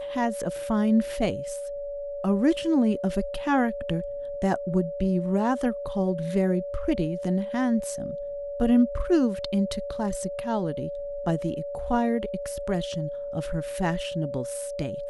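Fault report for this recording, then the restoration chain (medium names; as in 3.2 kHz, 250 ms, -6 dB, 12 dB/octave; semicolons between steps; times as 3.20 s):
whine 570 Hz -31 dBFS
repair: band-stop 570 Hz, Q 30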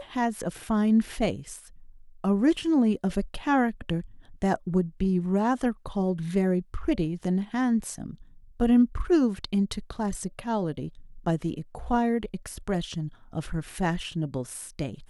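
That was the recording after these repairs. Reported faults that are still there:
nothing left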